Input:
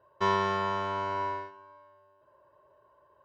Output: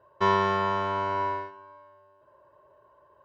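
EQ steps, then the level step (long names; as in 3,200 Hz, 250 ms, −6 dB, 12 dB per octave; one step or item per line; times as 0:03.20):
high-shelf EQ 5,000 Hz −7.5 dB
+4.0 dB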